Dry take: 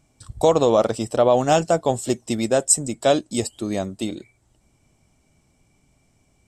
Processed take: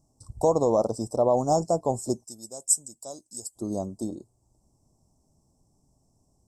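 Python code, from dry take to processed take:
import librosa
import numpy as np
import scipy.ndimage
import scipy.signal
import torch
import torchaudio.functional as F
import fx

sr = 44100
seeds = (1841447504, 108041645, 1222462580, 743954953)

y = scipy.signal.sosfilt(scipy.signal.ellip(3, 1.0, 70, [1000.0, 5200.0], 'bandstop', fs=sr, output='sos'), x)
y = fx.pre_emphasis(y, sr, coefficient=0.9, at=(2.23, 3.55), fade=0.02)
y = y * librosa.db_to_amplitude(-4.5)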